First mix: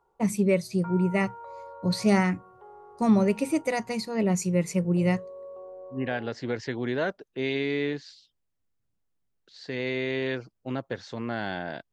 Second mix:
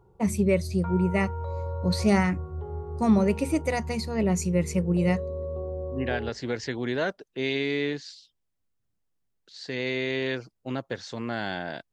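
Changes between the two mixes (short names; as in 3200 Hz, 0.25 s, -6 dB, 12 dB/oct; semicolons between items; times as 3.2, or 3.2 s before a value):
second voice: add high shelf 4700 Hz +10 dB; background: remove BPF 790–2200 Hz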